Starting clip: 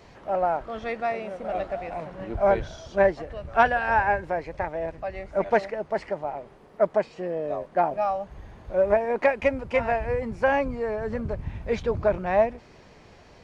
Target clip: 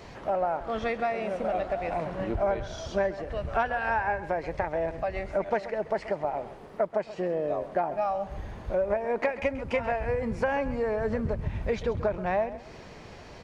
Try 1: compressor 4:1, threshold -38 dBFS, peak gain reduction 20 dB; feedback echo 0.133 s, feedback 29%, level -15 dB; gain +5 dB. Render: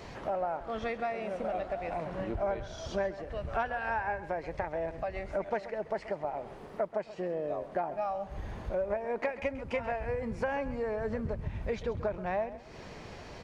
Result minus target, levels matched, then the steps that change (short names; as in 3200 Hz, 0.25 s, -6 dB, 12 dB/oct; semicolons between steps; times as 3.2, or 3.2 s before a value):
compressor: peak gain reduction +5 dB
change: compressor 4:1, threshold -31 dBFS, peak gain reduction 15 dB